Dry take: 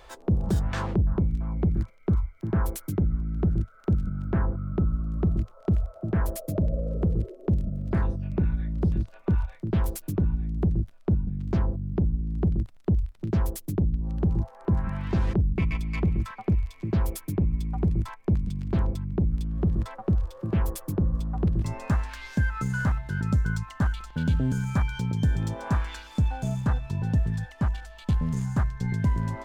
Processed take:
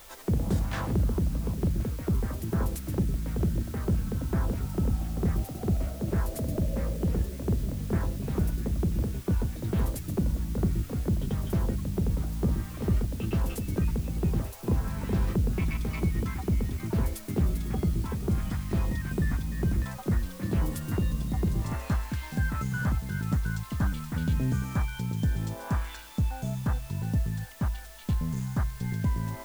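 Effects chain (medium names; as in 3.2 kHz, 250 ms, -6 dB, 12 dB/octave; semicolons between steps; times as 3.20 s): word length cut 8-bit, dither triangular; ever faster or slower copies 99 ms, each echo +3 st, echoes 3, each echo -6 dB; trim -3.5 dB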